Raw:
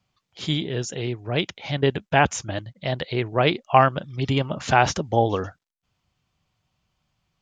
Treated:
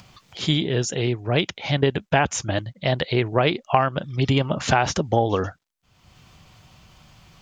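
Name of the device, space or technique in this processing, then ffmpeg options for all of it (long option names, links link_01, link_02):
upward and downward compression: -af "acompressor=mode=upward:threshold=-40dB:ratio=2.5,acompressor=threshold=-20dB:ratio=5,volume=5dB"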